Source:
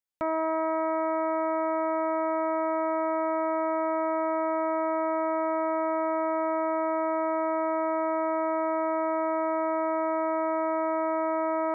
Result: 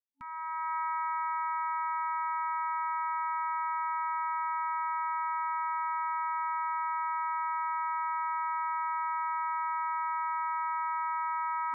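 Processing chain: opening faded in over 0.76 s; FFT band-reject 270–870 Hz

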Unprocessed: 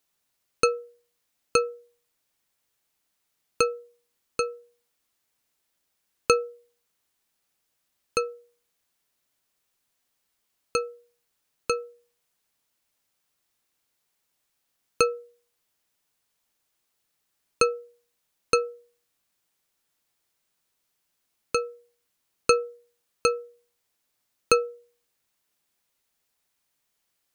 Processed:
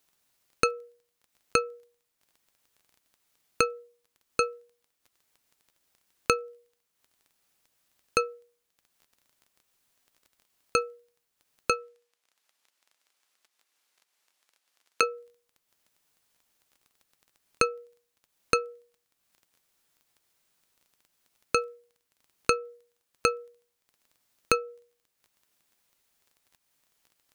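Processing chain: compressor 10:1, threshold -24 dBFS, peak gain reduction 11 dB; dynamic EQ 1800 Hz, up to +6 dB, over -46 dBFS, Q 0.94; crackle 13/s -47 dBFS; 11.7–15.03 weighting filter A; transient shaper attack -2 dB, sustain -7 dB; gain +4 dB

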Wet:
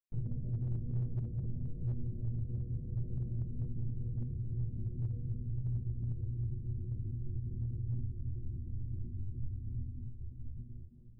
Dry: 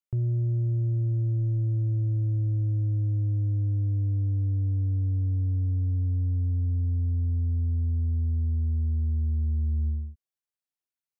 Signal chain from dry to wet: diffused feedback echo 1.013 s, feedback 51%, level -10.5 dB; compressor 2:1, threshold -30 dBFS, peak gain reduction 5.5 dB; LPC vocoder at 8 kHz whisper; resonator 120 Hz, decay 0.37 s, harmonics all, mix 90%; slew limiter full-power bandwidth 2.7 Hz; gain +2.5 dB

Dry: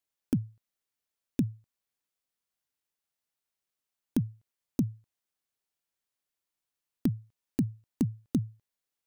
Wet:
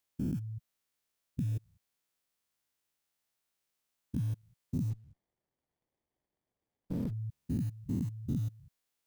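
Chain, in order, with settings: stepped spectrum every 0.2 s; 4.9–7.13 running maximum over 33 samples; gain +5.5 dB

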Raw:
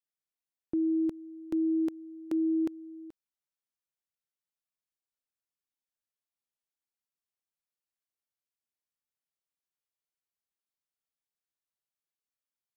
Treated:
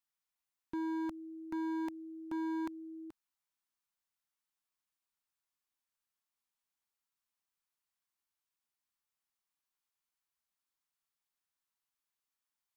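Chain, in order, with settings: graphic EQ 125/500/1000 Hz -6/-10/+6 dB; hard clip -37 dBFS, distortion -10 dB; gain +2 dB

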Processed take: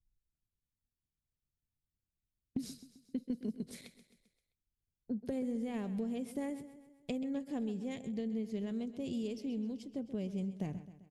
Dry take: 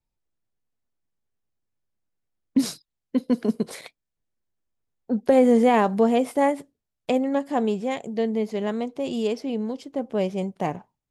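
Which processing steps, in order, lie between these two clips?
passive tone stack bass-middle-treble 10-0-1; compressor 10:1, threshold -45 dBFS, peak gain reduction 12.5 dB; feedback echo 0.131 s, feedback 53%, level -14 dB; gain +11 dB

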